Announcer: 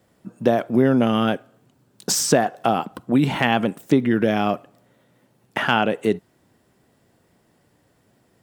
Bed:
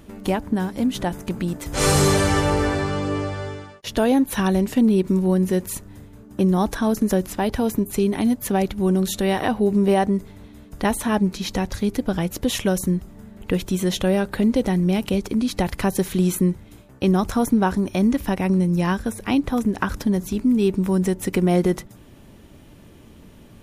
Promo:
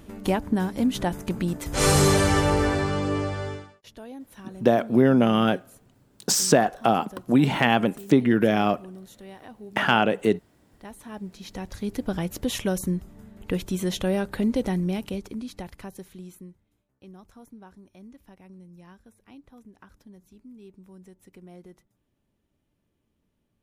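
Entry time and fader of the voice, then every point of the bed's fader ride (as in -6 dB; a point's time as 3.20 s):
4.20 s, -1.0 dB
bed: 3.55 s -1.5 dB
3.98 s -23 dB
10.78 s -23 dB
12.07 s -5 dB
14.73 s -5 dB
16.74 s -28.5 dB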